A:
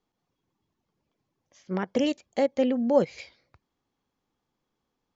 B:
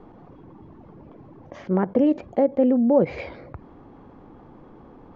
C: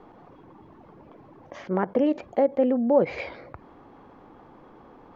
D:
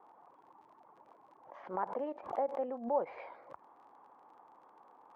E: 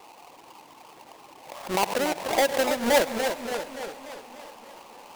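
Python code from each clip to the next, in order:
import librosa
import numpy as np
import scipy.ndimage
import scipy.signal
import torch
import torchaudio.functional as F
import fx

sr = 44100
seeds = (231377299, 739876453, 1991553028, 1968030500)

y1 = scipy.signal.sosfilt(scipy.signal.butter(2, 1000.0, 'lowpass', fs=sr, output='sos'), x)
y1 = fx.peak_eq(y1, sr, hz=310.0, db=3.5, octaves=0.32)
y1 = fx.env_flatten(y1, sr, amount_pct=50)
y1 = y1 * librosa.db_to_amplitude(2.0)
y2 = fx.low_shelf(y1, sr, hz=380.0, db=-11.0)
y2 = y2 * librosa.db_to_amplitude(2.5)
y3 = fx.dmg_crackle(y2, sr, seeds[0], per_s=35.0, level_db=-35.0)
y3 = fx.bandpass_q(y3, sr, hz=930.0, q=2.5)
y3 = fx.pre_swell(y3, sr, db_per_s=130.0)
y3 = y3 * librosa.db_to_amplitude(-4.0)
y4 = fx.halfwave_hold(y3, sr)
y4 = fx.echo_swing(y4, sr, ms=871, ratio=3, feedback_pct=33, wet_db=-21.5)
y4 = fx.echo_warbled(y4, sr, ms=291, feedback_pct=56, rate_hz=2.8, cents=172, wet_db=-7)
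y4 = y4 * librosa.db_to_amplitude(8.0)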